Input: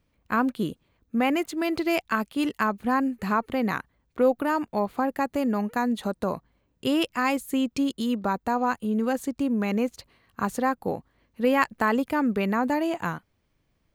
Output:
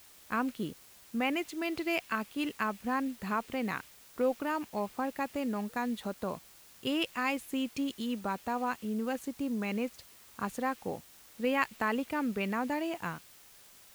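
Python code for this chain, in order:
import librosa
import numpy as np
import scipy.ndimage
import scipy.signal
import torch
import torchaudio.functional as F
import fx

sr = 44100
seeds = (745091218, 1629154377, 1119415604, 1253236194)

y = fx.quant_dither(x, sr, seeds[0], bits=8, dither='triangular')
y = fx.dynamic_eq(y, sr, hz=2600.0, q=1.6, threshold_db=-43.0, ratio=4.0, max_db=6)
y = y * 10.0 ** (-8.5 / 20.0)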